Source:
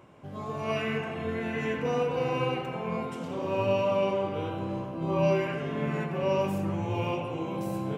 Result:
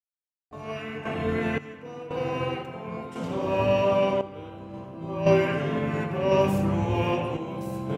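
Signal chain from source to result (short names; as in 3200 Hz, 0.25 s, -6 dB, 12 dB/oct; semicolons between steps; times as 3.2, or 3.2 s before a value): random-step tremolo 1.9 Hz, depth 100%; harmoniser -7 st -11 dB; gain +5.5 dB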